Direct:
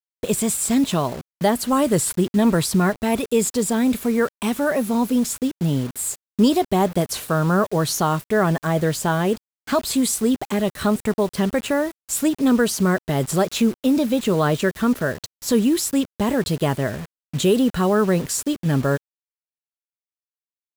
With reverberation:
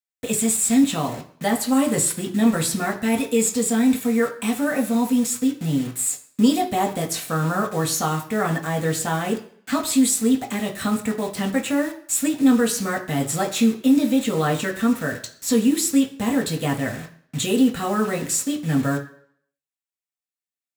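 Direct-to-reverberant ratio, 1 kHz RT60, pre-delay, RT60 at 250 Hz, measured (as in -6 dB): 0.5 dB, 0.60 s, 3 ms, 0.50 s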